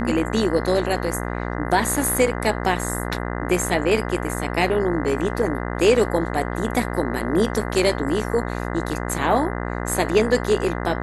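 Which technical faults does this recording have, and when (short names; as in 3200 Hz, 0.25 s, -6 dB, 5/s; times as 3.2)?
buzz 60 Hz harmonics 34 -27 dBFS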